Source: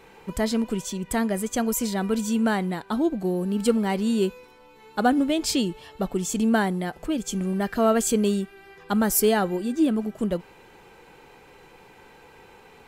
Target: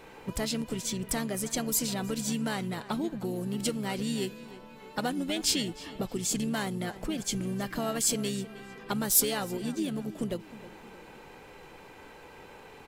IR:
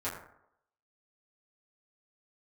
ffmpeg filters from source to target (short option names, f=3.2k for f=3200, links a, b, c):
-filter_complex "[0:a]acrossover=split=2600[a][b];[a]acompressor=threshold=-32dB:ratio=4[c];[c][b]amix=inputs=2:normalize=0,asplit=3[d][e][f];[e]asetrate=29433,aresample=44100,atempo=1.49831,volume=-9dB[g];[f]asetrate=55563,aresample=44100,atempo=0.793701,volume=-16dB[h];[d][g][h]amix=inputs=3:normalize=0,asplit=2[i][j];[j]adelay=313,lowpass=f=3.3k:p=1,volume=-16dB,asplit=2[k][l];[l]adelay=313,lowpass=f=3.3k:p=1,volume=0.48,asplit=2[m][n];[n]adelay=313,lowpass=f=3.3k:p=1,volume=0.48,asplit=2[o][p];[p]adelay=313,lowpass=f=3.3k:p=1,volume=0.48[q];[i][k][m][o][q]amix=inputs=5:normalize=0"